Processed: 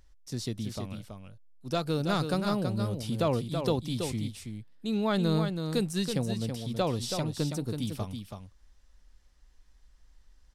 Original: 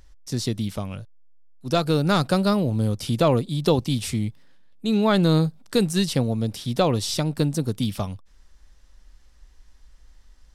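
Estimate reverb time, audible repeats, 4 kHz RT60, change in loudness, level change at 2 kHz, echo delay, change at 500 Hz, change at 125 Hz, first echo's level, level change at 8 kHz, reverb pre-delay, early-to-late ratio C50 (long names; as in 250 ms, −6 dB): no reverb audible, 1, no reverb audible, −8.0 dB, −7.5 dB, 327 ms, −7.5 dB, −8.0 dB, −6.5 dB, −7.5 dB, no reverb audible, no reverb audible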